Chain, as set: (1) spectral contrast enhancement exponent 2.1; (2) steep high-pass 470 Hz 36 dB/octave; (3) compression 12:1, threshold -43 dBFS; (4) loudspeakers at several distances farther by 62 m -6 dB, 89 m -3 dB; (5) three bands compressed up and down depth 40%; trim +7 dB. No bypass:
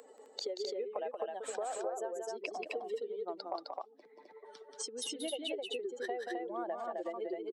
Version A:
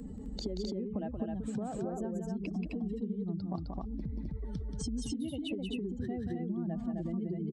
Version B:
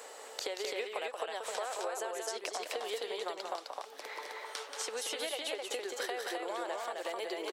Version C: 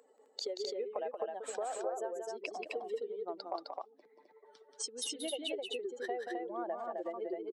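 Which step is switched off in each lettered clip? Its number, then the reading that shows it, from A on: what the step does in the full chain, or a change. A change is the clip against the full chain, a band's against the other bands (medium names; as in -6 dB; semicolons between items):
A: 2, 250 Hz band +18.0 dB; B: 1, 250 Hz band -8.0 dB; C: 5, momentary loudness spread change -6 LU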